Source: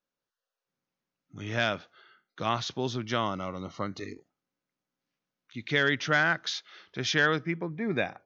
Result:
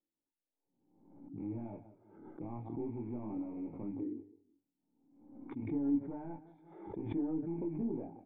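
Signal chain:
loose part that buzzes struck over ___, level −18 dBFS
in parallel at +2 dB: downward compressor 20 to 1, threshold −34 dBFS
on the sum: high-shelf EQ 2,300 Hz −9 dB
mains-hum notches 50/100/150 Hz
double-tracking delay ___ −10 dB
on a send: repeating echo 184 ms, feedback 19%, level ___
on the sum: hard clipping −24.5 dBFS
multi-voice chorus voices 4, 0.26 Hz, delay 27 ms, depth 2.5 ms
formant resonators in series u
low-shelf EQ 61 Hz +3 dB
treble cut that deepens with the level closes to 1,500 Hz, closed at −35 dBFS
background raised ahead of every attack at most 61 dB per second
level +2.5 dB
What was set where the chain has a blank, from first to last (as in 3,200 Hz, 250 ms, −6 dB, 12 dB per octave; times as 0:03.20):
−38 dBFS, 18 ms, −17.5 dB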